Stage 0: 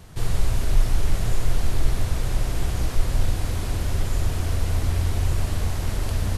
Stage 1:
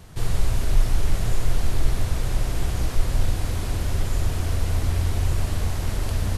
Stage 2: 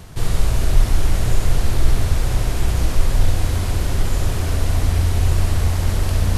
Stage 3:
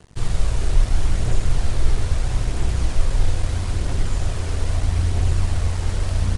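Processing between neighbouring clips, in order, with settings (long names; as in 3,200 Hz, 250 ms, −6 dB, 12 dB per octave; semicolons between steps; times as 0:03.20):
no processing that can be heard
reversed playback; upward compression, threshold −23 dBFS; reversed playback; flutter between parallel walls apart 11.6 metres, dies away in 0.5 s; level +4.5 dB
phase shifter 0.77 Hz, delay 2.5 ms, feedback 23%; dead-zone distortion −36 dBFS; downsampling to 22,050 Hz; level −4 dB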